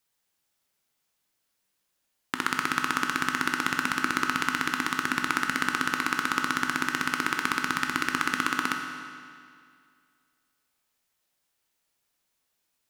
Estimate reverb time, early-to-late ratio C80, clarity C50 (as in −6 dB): 2.2 s, 5.5 dB, 4.5 dB